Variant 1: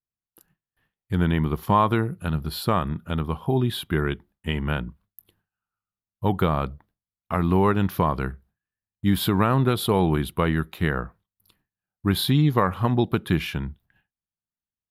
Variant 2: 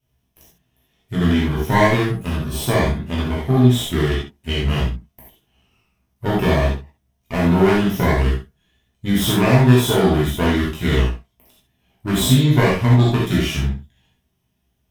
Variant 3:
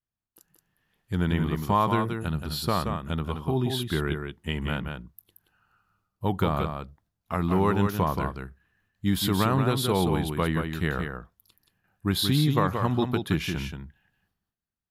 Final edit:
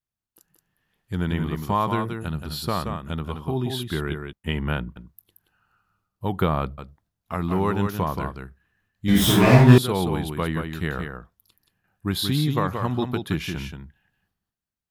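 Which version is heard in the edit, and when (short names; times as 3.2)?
3
4.33–4.96 from 1
6.38–6.78 from 1
9.08–9.78 from 2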